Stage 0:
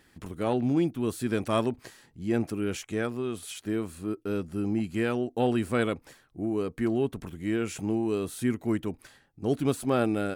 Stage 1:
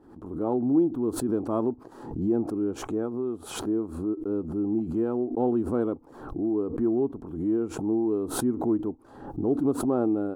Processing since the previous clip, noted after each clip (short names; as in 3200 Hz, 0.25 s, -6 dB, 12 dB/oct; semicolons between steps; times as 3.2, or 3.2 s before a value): EQ curve 170 Hz 0 dB, 310 Hz +11 dB, 600 Hz +2 dB, 870 Hz +6 dB, 1300 Hz -2 dB, 2000 Hz -23 dB, 3900 Hz -20 dB; backwards sustainer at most 74 dB/s; gain -6 dB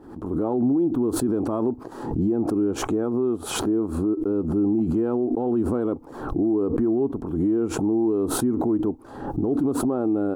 limiter -24.5 dBFS, peak gain reduction 11.5 dB; gain +9 dB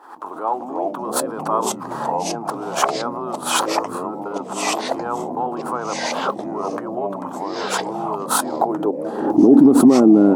high-pass sweep 970 Hz -> 210 Hz, 8.42–9.62; echoes that change speed 0.205 s, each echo -4 st, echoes 3; gain +7.5 dB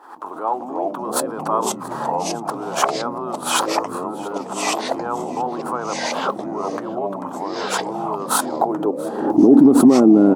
echo 0.68 s -21.5 dB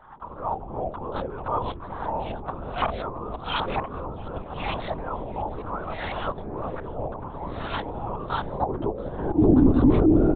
LPC vocoder at 8 kHz whisper; gain -6.5 dB